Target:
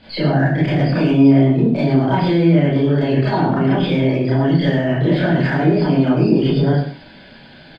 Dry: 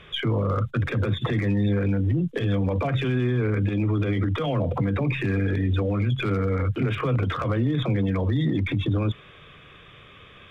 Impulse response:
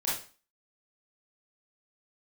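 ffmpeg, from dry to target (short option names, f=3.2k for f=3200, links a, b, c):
-filter_complex "[0:a]lowpass=f=2.1k:p=1,equalizer=f=200:w=2.9:g=9.5,aecho=1:1:138:0.316[a];[1:a]atrim=start_sample=2205,asetrate=34398,aresample=44100[b];[a][b]afir=irnorm=-1:irlink=0,asetrate=59535,aresample=44100,volume=-1.5dB"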